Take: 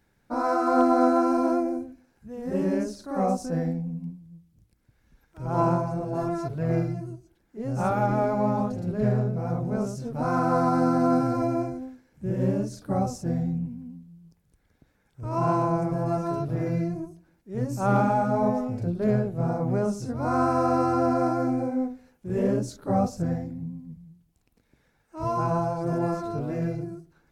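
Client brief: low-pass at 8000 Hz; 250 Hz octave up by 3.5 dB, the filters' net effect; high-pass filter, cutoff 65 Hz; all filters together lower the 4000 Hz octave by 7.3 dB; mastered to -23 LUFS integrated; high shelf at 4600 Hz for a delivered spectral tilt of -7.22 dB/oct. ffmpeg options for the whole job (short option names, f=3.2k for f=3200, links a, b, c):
-af "highpass=65,lowpass=8k,equalizer=f=250:t=o:g=4.5,equalizer=f=4k:t=o:g=-4.5,highshelf=f=4.6k:g=-7,volume=1.5dB"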